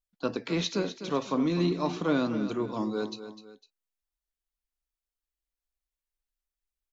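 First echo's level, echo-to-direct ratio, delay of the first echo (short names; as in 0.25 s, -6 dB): -11.5 dB, -11.0 dB, 0.252 s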